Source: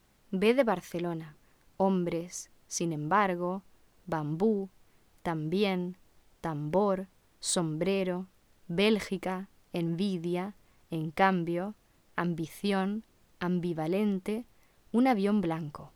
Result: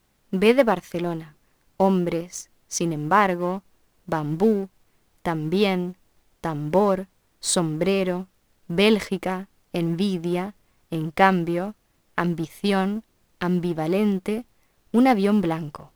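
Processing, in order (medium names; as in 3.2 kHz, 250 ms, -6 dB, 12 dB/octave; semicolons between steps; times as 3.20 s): companding laws mixed up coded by A; trim +8.5 dB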